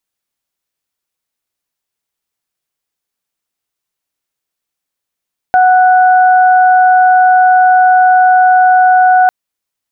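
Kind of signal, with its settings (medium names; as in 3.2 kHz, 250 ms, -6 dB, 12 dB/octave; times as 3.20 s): steady additive tone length 3.75 s, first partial 739 Hz, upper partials -9.5 dB, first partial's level -4.5 dB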